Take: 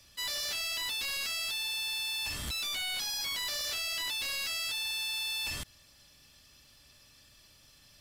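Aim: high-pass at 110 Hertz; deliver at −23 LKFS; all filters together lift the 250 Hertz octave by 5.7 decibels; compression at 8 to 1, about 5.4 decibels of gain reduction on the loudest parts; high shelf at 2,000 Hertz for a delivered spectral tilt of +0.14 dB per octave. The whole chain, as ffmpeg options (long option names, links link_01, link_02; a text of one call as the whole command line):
ffmpeg -i in.wav -af "highpass=110,equalizer=frequency=250:width_type=o:gain=7.5,highshelf=frequency=2000:gain=5,acompressor=threshold=-35dB:ratio=8,volume=10.5dB" out.wav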